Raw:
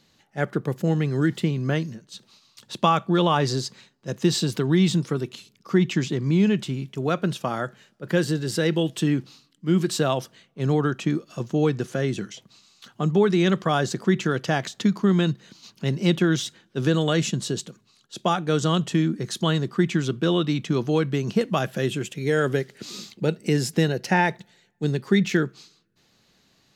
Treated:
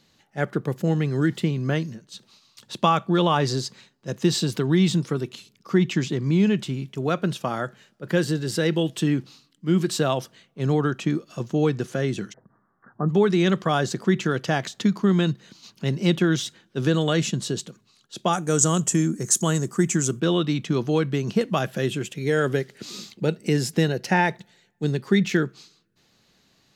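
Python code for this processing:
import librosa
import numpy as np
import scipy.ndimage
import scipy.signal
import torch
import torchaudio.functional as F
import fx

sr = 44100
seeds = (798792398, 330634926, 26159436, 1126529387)

y = fx.steep_lowpass(x, sr, hz=1800.0, slope=96, at=(12.32, 13.08), fade=0.02)
y = fx.high_shelf_res(y, sr, hz=5300.0, db=11.5, q=3.0, at=(18.33, 20.2))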